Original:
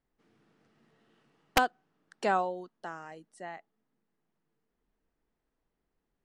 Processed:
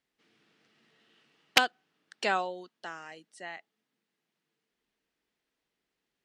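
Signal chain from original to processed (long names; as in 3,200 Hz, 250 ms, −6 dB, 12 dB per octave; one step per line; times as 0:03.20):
meter weighting curve D
level −2 dB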